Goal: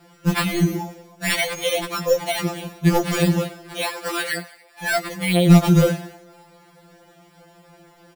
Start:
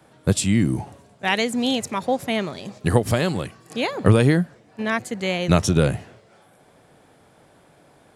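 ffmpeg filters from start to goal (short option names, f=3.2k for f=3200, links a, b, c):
-filter_complex "[0:a]asettb=1/sr,asplit=3[a][b][c];[a]atrim=end=3.814[d];[b]atrim=start=3.81:end=4.84,asetpts=PTS-STARTPTS,afade=t=in:d=0.004:c=qsin,afade=t=out:st=1.026:d=0.004:c=qsin,highpass=830[e];[c]atrim=start=4.836[f];[d][e]acrossfade=d=0.004:c1=hsin:c2=qsin[g];[g][f]acrossfade=d=0.004:c1=qsin:c2=hsin,acrusher=samples=7:mix=1:aa=0.000001,asoftclip=type=tanh:threshold=-11.5dB,asplit=5[h][i][j][k][l];[i]adelay=96,afreqshift=62,volume=-17dB[m];[j]adelay=192,afreqshift=124,volume=-23.2dB[n];[k]adelay=288,afreqshift=186,volume=-29.4dB[o];[l]adelay=384,afreqshift=248,volume=-35.6dB[p];[h][m][n][o][p]amix=inputs=5:normalize=0,afftfilt=real='re*2.83*eq(mod(b,8),0)':imag='im*2.83*eq(mod(b,8),0)':win_size=2048:overlap=0.75,volume=5.5dB"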